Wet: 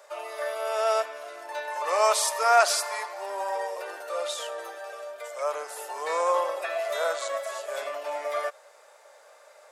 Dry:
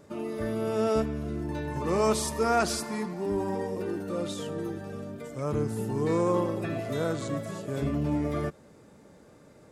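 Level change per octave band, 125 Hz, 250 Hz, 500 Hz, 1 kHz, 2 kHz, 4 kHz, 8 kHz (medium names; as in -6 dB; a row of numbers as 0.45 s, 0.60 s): under -40 dB, -26.5 dB, +1.0 dB, +7.0 dB, +7.5 dB, +6.5 dB, +6.5 dB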